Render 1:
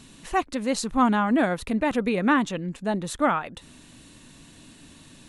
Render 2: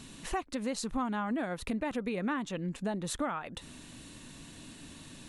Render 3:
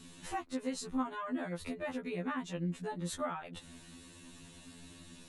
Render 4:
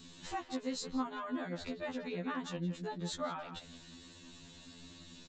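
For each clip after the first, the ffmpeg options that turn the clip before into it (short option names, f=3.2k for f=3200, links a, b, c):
-af "acompressor=threshold=-31dB:ratio=6"
-af "afftfilt=real='re*2*eq(mod(b,4),0)':imag='im*2*eq(mod(b,4),0)':win_size=2048:overlap=0.75,volume=-2dB"
-filter_complex "[0:a]asplit=2[a][b];[b]adelay=170,highpass=300,lowpass=3.4k,asoftclip=type=hard:threshold=-33dB,volume=-9dB[c];[a][c]amix=inputs=2:normalize=0,aresample=16000,aresample=44100,aexciter=amount=2.1:drive=3.1:freq=3.5k,volume=-1.5dB"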